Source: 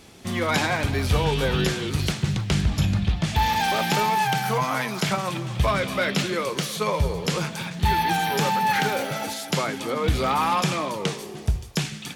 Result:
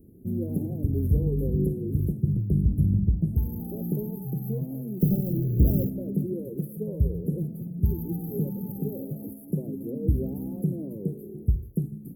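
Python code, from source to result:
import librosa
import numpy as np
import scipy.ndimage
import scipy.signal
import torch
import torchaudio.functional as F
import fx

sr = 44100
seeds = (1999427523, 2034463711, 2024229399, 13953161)

y = fx.halfwave_hold(x, sr, at=(5.0, 5.89))
y = scipy.signal.sosfilt(scipy.signal.cheby2(4, 60, [1100.0, 6200.0], 'bandstop', fs=sr, output='sos'), y)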